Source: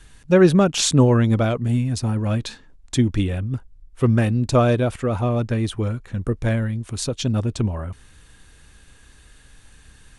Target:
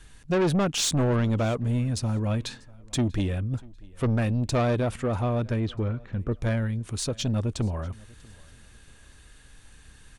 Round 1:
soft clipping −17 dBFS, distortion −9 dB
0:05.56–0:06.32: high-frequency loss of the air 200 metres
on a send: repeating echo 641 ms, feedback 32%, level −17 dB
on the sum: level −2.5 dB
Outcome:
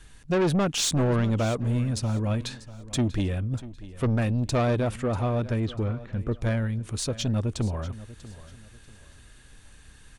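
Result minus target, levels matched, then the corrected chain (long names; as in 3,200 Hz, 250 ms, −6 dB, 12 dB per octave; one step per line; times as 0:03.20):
echo-to-direct +8 dB
soft clipping −17 dBFS, distortion −9 dB
0:05.56–0:06.32: high-frequency loss of the air 200 metres
on a send: repeating echo 641 ms, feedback 32%, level −25 dB
on the sum: level −2.5 dB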